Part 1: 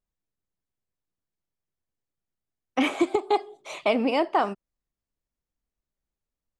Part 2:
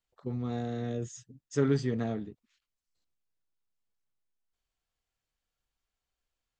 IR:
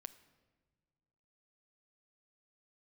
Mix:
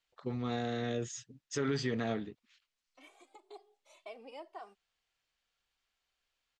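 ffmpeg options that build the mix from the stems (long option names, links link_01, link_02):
-filter_complex "[0:a]highpass=580,equalizer=frequency=1600:width=0.44:gain=-8.5,asplit=2[link_01][link_02];[link_02]adelay=2.1,afreqshift=2[link_03];[link_01][link_03]amix=inputs=2:normalize=1,adelay=200,volume=-15dB[link_04];[1:a]lowshelf=frequency=220:gain=-7,crystalizer=i=7:c=0,lowpass=3000,volume=1dB,asplit=2[link_05][link_06];[link_06]apad=whole_len=299531[link_07];[link_04][link_07]sidechaincompress=threshold=-45dB:ratio=8:attack=5.6:release=1090[link_08];[link_08][link_05]amix=inputs=2:normalize=0,alimiter=limit=-23dB:level=0:latency=1:release=84"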